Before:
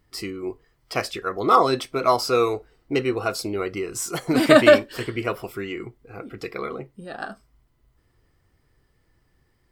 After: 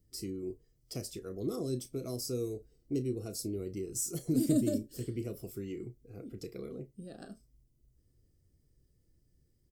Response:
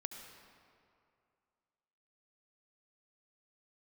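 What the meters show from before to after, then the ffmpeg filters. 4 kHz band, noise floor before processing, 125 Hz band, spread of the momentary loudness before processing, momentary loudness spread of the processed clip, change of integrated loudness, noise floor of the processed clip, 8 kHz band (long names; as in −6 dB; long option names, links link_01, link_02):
−17.5 dB, −66 dBFS, −4.5 dB, 19 LU, 17 LU, −14.5 dB, −72 dBFS, −5.5 dB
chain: -filter_complex "[0:a]firequalizer=gain_entry='entry(160,0);entry(580,-8);entry(870,-23);entry(6000,0)':delay=0.05:min_phase=1,acrossover=split=380|6000[link_01][link_02][link_03];[link_02]acompressor=threshold=-41dB:ratio=10[link_04];[link_01][link_04][link_03]amix=inputs=3:normalize=0,asplit=2[link_05][link_06];[link_06]adelay=32,volume=-13dB[link_07];[link_05][link_07]amix=inputs=2:normalize=0,volume=-4.5dB"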